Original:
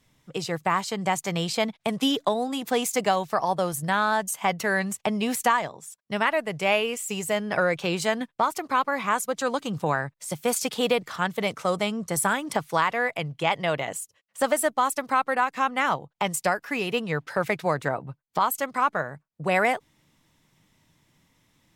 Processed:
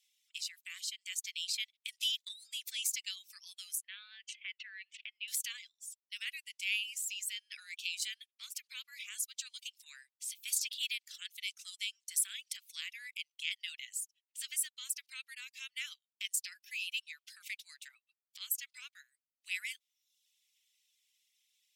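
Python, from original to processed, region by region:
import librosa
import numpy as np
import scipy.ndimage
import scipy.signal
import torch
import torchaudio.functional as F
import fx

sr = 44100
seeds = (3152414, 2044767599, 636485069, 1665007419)

y = fx.chain(x, sr, fx.lowpass(hz=2800.0, slope=24),
    fx.notch(hz=790.0, q=15.0),
    fx.sustainer(db_per_s=120.0), at=(3.81, 5.28))
y = scipy.signal.sosfilt(scipy.signal.butter(6, 2500.0, 'highpass', fs=sr, output='sos'), y)
y = fx.dereverb_blind(y, sr, rt60_s=0.65)
y = y * librosa.db_to_amplitude(-4.0)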